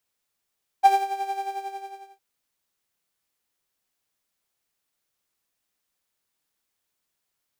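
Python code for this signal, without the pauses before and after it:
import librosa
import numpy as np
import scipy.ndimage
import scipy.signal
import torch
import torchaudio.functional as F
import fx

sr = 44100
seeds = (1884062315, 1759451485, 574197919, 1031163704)

y = fx.sub_patch_tremolo(sr, seeds[0], note=79, wave='triangle', wave2='saw', interval_st=0, detune_cents=25, level2_db=-9.0, sub_db=-22.0, noise_db=-28.0, kind='highpass', cutoff_hz=350.0, q=3.8, env_oct=1.0, env_decay_s=0.07, env_sustain_pct=30, attack_ms=28.0, decay_s=0.19, sustain_db=-12.5, release_s=0.88, note_s=0.48, lfo_hz=11.0, tremolo_db=7)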